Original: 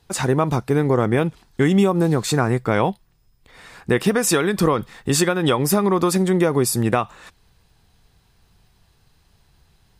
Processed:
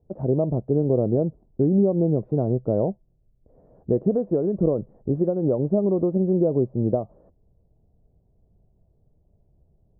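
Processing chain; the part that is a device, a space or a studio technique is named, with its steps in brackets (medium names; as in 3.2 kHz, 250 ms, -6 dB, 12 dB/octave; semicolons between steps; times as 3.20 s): under water (low-pass 540 Hz 24 dB/octave; peaking EQ 620 Hz +10 dB 0.38 oct); trim -3 dB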